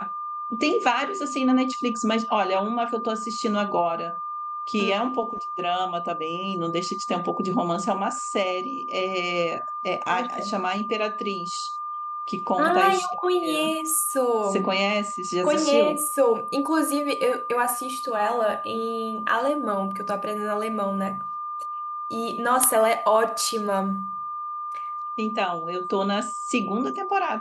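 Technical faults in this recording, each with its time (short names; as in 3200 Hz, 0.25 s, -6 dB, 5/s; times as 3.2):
tone 1200 Hz -29 dBFS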